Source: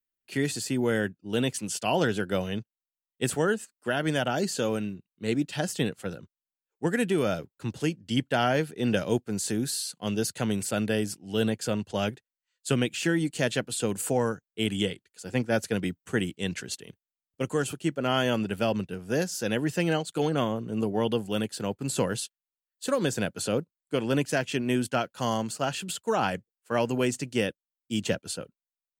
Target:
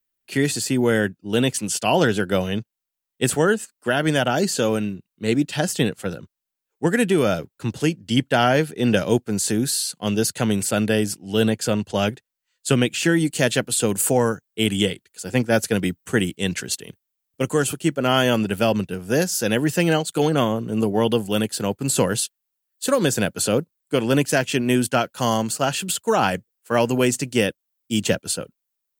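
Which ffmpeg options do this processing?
ffmpeg -i in.wav -af "asetnsamples=nb_out_samples=441:pad=0,asendcmd='13.12 highshelf g 10',highshelf=frequency=10000:gain=3.5,volume=7dB" out.wav

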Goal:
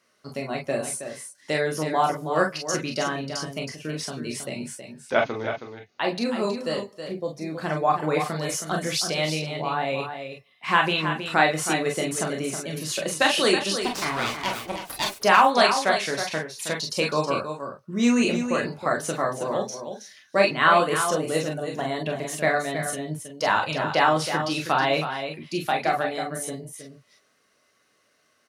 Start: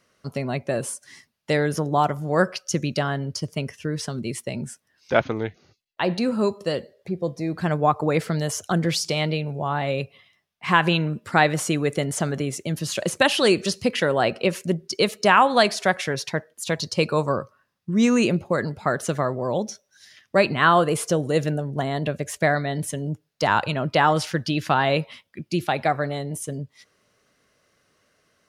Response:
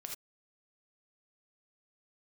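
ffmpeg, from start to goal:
-filter_complex "[0:a]asettb=1/sr,asplit=3[link_01][link_02][link_03];[link_01]atrim=end=13.824[link_04];[link_02]atrim=start=13.82:end=15.2,asetpts=PTS-STARTPTS,afade=type=in:duration=0.004:curve=qsin,afade=type=out:start_time=1.376:duration=0.004:curve=qsin,aeval=exprs='abs(val(0))':channel_layout=same[link_05];[link_03]atrim=start=15.196[link_06];[link_04][link_05]acrossfade=duration=0.004:curve1=hsin:curve2=qsin[link_07];[link_07][link_06]acrossfade=duration=0.004:curve1=qsin:curve2=hsin,highpass=frequency=320:poles=1,aecho=1:1:320:0.376[link_08];[1:a]atrim=start_sample=2205,asetrate=79380,aresample=44100[link_09];[link_08][link_09]afir=irnorm=-1:irlink=0,volume=8dB"

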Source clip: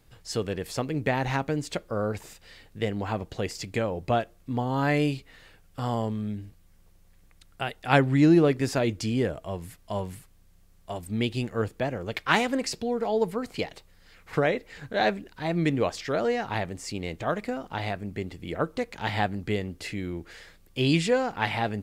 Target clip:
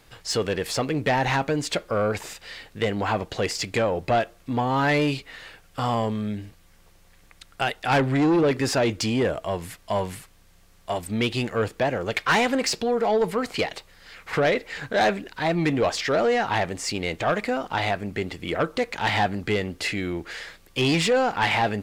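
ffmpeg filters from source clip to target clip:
ffmpeg -i in.wav -filter_complex "[0:a]asoftclip=type=tanh:threshold=-21dB,asplit=2[link_01][link_02];[link_02]highpass=frequency=720:poles=1,volume=9dB,asoftclip=type=tanh:threshold=-21dB[link_03];[link_01][link_03]amix=inputs=2:normalize=0,lowpass=frequency=5700:poles=1,volume=-6dB,volume=7dB" out.wav

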